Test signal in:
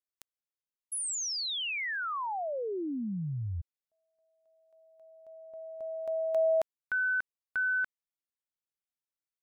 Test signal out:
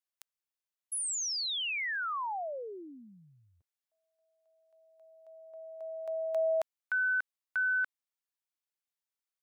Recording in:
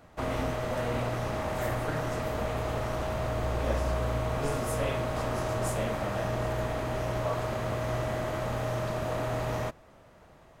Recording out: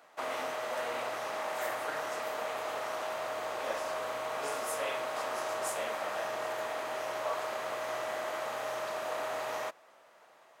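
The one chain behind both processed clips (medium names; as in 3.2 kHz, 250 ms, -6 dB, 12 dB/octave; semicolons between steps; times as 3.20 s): high-pass 640 Hz 12 dB/octave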